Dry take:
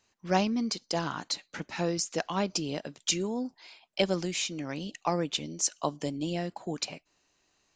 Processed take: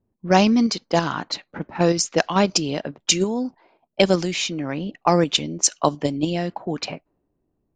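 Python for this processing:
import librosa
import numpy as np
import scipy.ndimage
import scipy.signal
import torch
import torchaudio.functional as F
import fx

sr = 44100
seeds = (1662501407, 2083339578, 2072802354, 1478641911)

p1 = fx.env_lowpass(x, sr, base_hz=300.0, full_db=-25.5)
p2 = fx.level_steps(p1, sr, step_db=15)
p3 = p1 + (p2 * 10.0 ** (2.0 / 20.0))
y = p3 * 10.0 ** (6.0 / 20.0)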